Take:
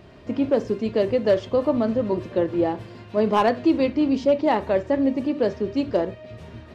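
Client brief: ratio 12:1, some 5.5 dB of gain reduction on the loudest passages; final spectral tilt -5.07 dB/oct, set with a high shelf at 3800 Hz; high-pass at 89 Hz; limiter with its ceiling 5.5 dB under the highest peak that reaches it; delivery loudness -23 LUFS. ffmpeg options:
-af "highpass=89,highshelf=f=3.8k:g=-4,acompressor=threshold=-20dB:ratio=12,volume=5.5dB,alimiter=limit=-13dB:level=0:latency=1"

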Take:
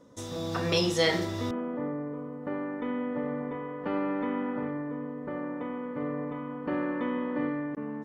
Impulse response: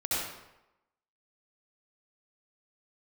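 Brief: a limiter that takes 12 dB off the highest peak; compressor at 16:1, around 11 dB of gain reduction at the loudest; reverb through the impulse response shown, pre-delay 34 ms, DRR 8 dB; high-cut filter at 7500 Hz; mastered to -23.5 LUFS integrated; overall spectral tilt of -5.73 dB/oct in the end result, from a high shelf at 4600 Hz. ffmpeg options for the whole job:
-filter_complex "[0:a]lowpass=7.5k,highshelf=f=4.6k:g=-3.5,acompressor=threshold=-31dB:ratio=16,alimiter=level_in=10dB:limit=-24dB:level=0:latency=1,volume=-10dB,asplit=2[a][b];[1:a]atrim=start_sample=2205,adelay=34[c];[b][c]afir=irnorm=-1:irlink=0,volume=-16dB[d];[a][d]amix=inputs=2:normalize=0,volume=18dB"

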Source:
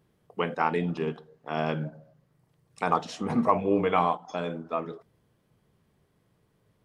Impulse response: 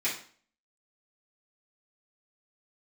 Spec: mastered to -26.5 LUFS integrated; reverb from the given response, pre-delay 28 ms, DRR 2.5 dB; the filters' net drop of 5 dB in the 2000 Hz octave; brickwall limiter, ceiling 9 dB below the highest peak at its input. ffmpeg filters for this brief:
-filter_complex "[0:a]equalizer=f=2k:t=o:g=-7,alimiter=limit=-18dB:level=0:latency=1,asplit=2[a][b];[1:a]atrim=start_sample=2205,adelay=28[c];[b][c]afir=irnorm=-1:irlink=0,volume=-11dB[d];[a][d]amix=inputs=2:normalize=0,volume=4dB"

